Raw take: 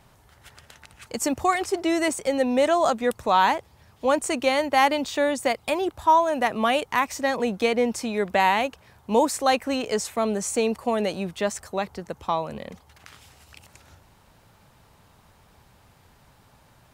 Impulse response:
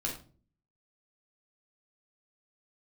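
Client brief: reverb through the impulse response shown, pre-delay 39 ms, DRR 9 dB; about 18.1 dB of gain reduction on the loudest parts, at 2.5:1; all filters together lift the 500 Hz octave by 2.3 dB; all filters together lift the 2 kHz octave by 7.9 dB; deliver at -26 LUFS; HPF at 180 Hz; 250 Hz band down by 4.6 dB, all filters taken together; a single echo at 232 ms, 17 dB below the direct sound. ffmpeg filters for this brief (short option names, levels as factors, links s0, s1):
-filter_complex "[0:a]highpass=180,equalizer=f=250:t=o:g=-6,equalizer=f=500:t=o:g=3.5,equalizer=f=2000:t=o:g=9,acompressor=threshold=0.01:ratio=2.5,aecho=1:1:232:0.141,asplit=2[s0][s1];[1:a]atrim=start_sample=2205,adelay=39[s2];[s1][s2]afir=irnorm=-1:irlink=0,volume=0.237[s3];[s0][s3]amix=inputs=2:normalize=0,volume=3.16"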